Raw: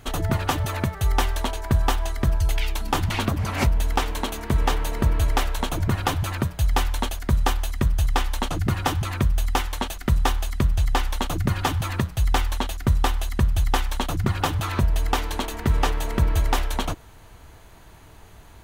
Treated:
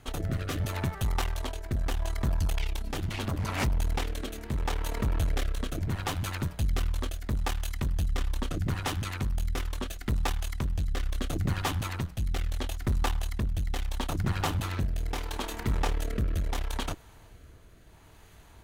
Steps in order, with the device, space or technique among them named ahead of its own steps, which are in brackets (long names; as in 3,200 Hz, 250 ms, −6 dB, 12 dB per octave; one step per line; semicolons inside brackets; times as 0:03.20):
overdriven rotary cabinet (tube saturation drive 22 dB, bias 0.7; rotating-speaker cabinet horn 0.75 Hz)
0:14.32–0:15.94: double-tracking delay 33 ms −14 dB